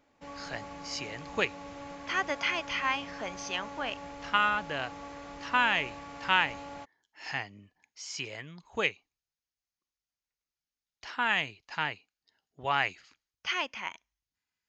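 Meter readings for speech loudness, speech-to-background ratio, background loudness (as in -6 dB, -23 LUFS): -31.5 LUFS, 12.5 dB, -44.0 LUFS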